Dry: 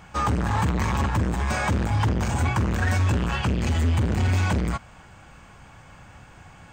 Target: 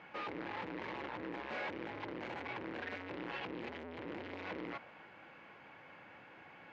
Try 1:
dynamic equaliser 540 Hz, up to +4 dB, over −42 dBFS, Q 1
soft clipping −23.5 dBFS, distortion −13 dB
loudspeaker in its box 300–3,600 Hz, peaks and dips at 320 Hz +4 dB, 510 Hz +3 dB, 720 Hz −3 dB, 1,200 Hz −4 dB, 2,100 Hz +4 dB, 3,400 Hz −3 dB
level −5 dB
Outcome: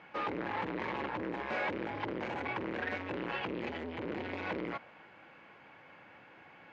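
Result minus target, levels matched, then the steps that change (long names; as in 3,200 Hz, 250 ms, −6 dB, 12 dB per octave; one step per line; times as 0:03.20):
soft clipping: distortion −6 dB
change: soft clipping −32.5 dBFS, distortion −7 dB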